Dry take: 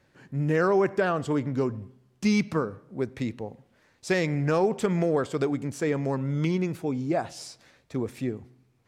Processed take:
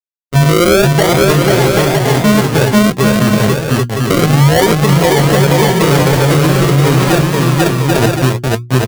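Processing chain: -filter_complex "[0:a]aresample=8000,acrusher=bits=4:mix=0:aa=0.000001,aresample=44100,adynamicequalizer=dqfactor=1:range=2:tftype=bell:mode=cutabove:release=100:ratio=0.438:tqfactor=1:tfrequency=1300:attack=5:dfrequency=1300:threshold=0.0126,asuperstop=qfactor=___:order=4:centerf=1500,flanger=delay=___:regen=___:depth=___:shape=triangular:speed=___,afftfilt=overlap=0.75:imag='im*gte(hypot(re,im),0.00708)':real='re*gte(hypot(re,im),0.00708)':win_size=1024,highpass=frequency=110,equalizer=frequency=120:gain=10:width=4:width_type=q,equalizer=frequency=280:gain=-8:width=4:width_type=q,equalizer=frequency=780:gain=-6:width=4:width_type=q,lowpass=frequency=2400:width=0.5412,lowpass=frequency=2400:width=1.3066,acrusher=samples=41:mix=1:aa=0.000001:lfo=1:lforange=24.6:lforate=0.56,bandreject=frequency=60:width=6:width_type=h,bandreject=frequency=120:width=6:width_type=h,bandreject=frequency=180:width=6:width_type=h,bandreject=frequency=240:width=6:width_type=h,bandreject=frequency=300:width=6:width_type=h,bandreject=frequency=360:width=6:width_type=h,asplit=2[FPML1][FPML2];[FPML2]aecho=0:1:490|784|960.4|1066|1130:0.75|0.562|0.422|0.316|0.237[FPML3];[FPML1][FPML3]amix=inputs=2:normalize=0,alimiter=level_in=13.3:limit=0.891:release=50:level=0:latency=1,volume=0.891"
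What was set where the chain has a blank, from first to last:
1.6, 6, 52, 3.9, 0.7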